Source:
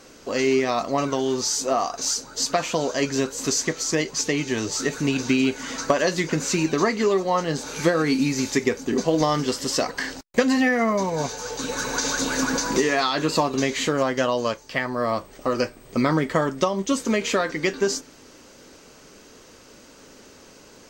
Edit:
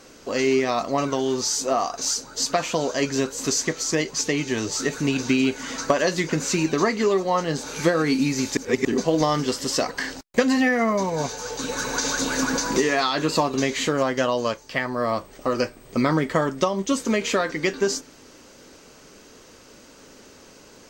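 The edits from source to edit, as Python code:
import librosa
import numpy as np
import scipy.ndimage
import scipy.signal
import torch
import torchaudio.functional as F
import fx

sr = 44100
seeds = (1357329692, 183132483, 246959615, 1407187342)

y = fx.edit(x, sr, fx.reverse_span(start_s=8.57, length_s=0.28), tone=tone)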